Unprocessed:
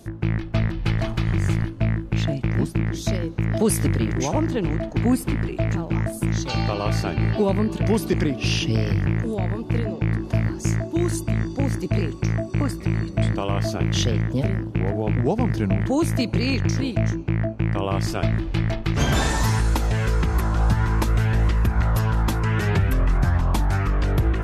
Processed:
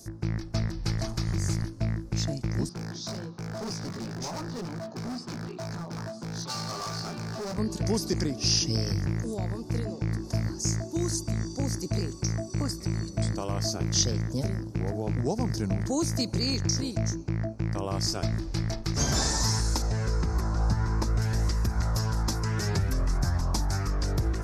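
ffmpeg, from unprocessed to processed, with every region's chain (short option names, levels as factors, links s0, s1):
-filter_complex "[0:a]asettb=1/sr,asplit=3[s0][s1][s2];[s0]atrim=end=2.694[s3];[s1]atrim=start=2.69:end=7.58,asetpts=PTS-STARTPTS,afade=t=in:d=0.004:c=qsin,afade=t=out:st=4.886:d=0.004:c=qsin,highpass=f=140:w=0.5412,highpass=f=140:w=1.3066,equalizer=f=300:t=q:w=4:g=-7,equalizer=f=520:t=q:w=4:g=-5,equalizer=f=1200:t=q:w=4:g=7,equalizer=f=2100:t=q:w=4:g=-6,lowpass=f=4100:w=0.5412,lowpass=f=4100:w=1.3066,asplit=2[s4][s5];[s5]adelay=17,volume=0.75[s6];[s4][s6]amix=inputs=2:normalize=0,atrim=end_sample=215649,asoftclip=type=hard:threshold=0.0531[s7];[s2]atrim=start=7.576[s8];[s3][s7]acrossfade=d=0.004:c1=hsin:c2=qsin[s9];[s9][s8]acrossfade=d=0.004:c1=qsin:c2=hsin,asettb=1/sr,asplit=3[s10][s11][s12];[s10]atrim=end=19.824[s13];[s11]atrim=start=19.82:end=21.22,asetpts=PTS-STARTPTS,afade=t=in:d=0.004:c=qsin,afade=t=out:st=1.396:d=0.004:c=qsin,aemphasis=mode=reproduction:type=75fm,bandreject=f=3300:w=27[s14];[s12]atrim=start=21.216[s15];[s13][s14]acrossfade=d=0.004:c1=hsin:c2=qsin[s16];[s16][s15]acrossfade=d=0.004:c1=qsin:c2=hsin,acrossover=split=6400[s17][s18];[s18]acompressor=threshold=0.00501:ratio=4:attack=1:release=60[s19];[s17][s19]amix=inputs=2:normalize=0,highshelf=f=4000:t=q:w=3:g=10,volume=0.447"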